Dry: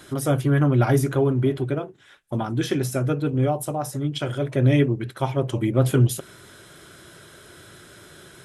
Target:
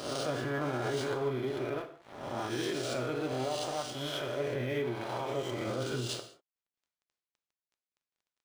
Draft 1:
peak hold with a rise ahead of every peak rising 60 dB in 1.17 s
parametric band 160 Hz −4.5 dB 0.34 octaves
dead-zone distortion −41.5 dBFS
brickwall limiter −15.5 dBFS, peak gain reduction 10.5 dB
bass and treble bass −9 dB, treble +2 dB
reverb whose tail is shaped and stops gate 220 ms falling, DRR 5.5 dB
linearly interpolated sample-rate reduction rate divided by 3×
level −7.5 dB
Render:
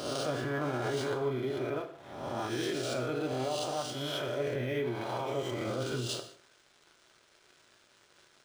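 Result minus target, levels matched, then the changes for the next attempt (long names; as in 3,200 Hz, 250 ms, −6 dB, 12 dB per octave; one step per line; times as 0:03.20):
dead-zone distortion: distortion −7 dB
change: dead-zone distortion −34 dBFS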